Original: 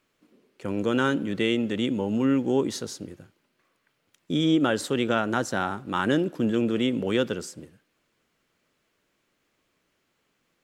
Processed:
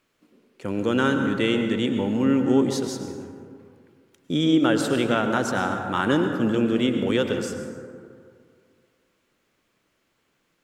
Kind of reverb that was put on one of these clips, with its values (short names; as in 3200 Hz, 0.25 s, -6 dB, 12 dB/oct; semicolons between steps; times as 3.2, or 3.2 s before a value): plate-style reverb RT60 2.2 s, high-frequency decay 0.35×, pre-delay 90 ms, DRR 5.5 dB; gain +1.5 dB